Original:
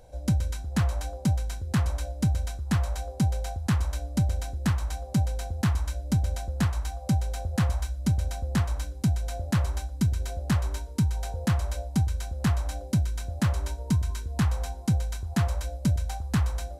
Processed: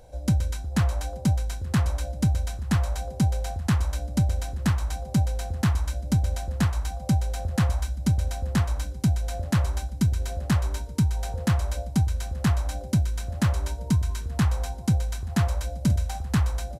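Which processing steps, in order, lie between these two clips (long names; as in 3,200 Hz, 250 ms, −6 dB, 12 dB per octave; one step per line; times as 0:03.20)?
0:15.69–0:16.25: double-tracking delay 49 ms −13 dB
repeating echo 879 ms, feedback 54%, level −24 dB
level +2 dB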